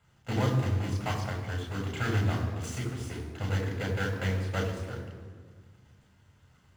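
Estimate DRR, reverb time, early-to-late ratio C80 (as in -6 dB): 0.0 dB, 1.7 s, 6.5 dB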